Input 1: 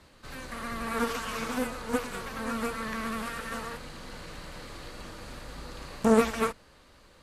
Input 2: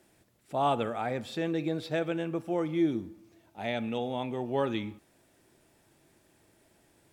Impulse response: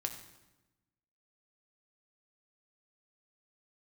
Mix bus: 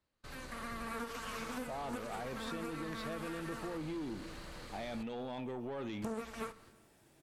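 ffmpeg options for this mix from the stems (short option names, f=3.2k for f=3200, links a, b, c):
-filter_complex "[0:a]agate=range=-22dB:threshold=-51dB:ratio=16:detection=peak,volume=-8dB,asplit=3[a][b][c];[a]atrim=end=5.03,asetpts=PTS-STARTPTS,afade=t=out:st=5.026:d=0.004:c=hsin[d];[b]atrim=start=5.03:end=6.02,asetpts=PTS-STARTPTS,volume=0[e];[c]atrim=start=6.02,asetpts=PTS-STARTPTS,afade=t=in:d=0.004:c=hsin[f];[d][e][f]concat=n=3:v=0:a=1,asplit=2[g][h];[h]volume=-10dB[i];[1:a]alimiter=level_in=1dB:limit=-24dB:level=0:latency=1:release=15,volume=-1dB,asoftclip=type=tanh:threshold=-30.5dB,adelay=1150,volume=-1.5dB[j];[2:a]atrim=start_sample=2205[k];[i][k]afir=irnorm=-1:irlink=0[l];[g][j][l]amix=inputs=3:normalize=0,acompressor=threshold=-38dB:ratio=5"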